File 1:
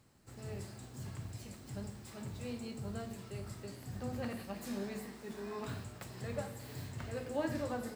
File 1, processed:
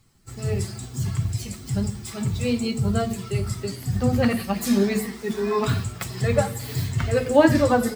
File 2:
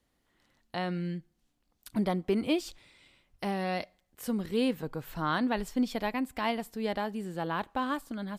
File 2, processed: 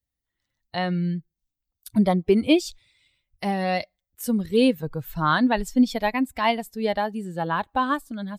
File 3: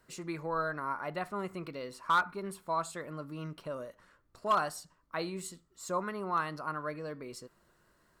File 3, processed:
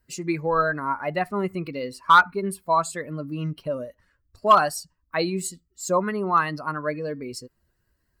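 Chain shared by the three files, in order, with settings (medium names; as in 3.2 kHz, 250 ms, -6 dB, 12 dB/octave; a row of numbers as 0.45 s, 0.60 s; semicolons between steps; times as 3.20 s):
expander on every frequency bin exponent 1.5; normalise loudness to -24 LUFS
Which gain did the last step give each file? +22.0 dB, +11.0 dB, +14.0 dB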